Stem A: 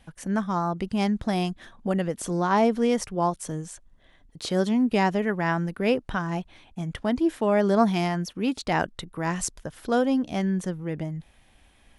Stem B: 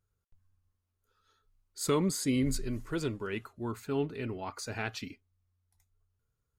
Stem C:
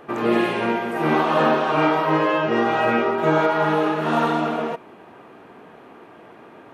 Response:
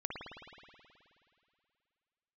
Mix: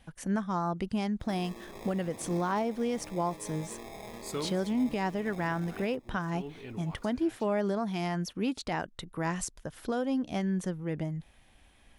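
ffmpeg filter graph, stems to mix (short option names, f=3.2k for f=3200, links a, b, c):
-filter_complex "[0:a]volume=-2.5dB,asplit=2[a][b];[1:a]adelay=2450,volume=-7dB[c];[2:a]acompressor=threshold=-27dB:ratio=4,acrusher=samples=30:mix=1:aa=0.000001,adelay=1200,volume=-16dB[d];[b]apad=whole_len=398288[e];[c][e]sidechaincompress=threshold=-32dB:ratio=8:attack=16:release=354[f];[a][f][d]amix=inputs=3:normalize=0,alimiter=limit=-21.5dB:level=0:latency=1:release=331"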